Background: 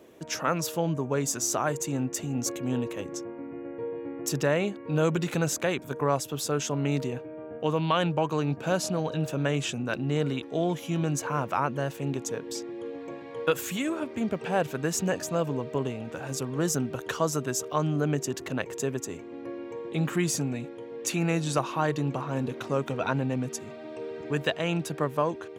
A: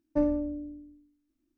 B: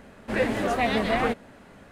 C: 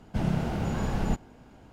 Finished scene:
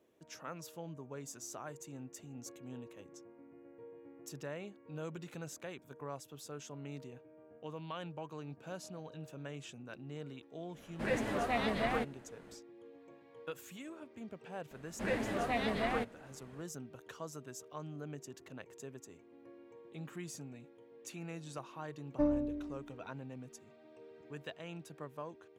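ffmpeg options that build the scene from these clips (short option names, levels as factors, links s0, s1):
-filter_complex "[2:a]asplit=2[s0][s1];[0:a]volume=0.119[s2];[s0]atrim=end=1.91,asetpts=PTS-STARTPTS,volume=0.335,afade=t=in:d=0.1,afade=t=out:st=1.81:d=0.1,adelay=10710[s3];[s1]atrim=end=1.91,asetpts=PTS-STARTPTS,volume=0.316,afade=t=in:d=0.004:c=hsin,afade=t=out:st=1.906:d=0.004:c=hsin,adelay=14710[s4];[1:a]atrim=end=1.57,asetpts=PTS-STARTPTS,volume=0.562,afade=t=in:d=0.004:c=hsin,afade=t=out:st=1.566:d=0.004:c=hsin,adelay=22030[s5];[s2][s3][s4][s5]amix=inputs=4:normalize=0"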